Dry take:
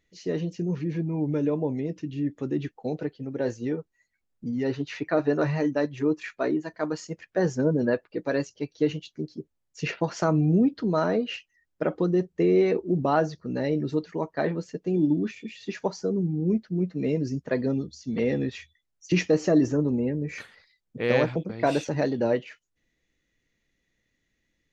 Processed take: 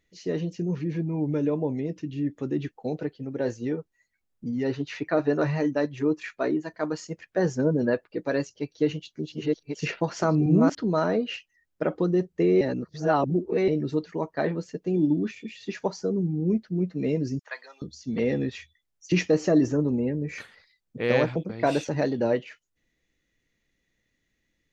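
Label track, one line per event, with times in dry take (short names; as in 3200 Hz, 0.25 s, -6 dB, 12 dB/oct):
8.530000	10.750000	reverse delay 0.643 s, level -2 dB
12.610000	13.680000	reverse
17.390000	17.820000	HPF 930 Hz 24 dB/oct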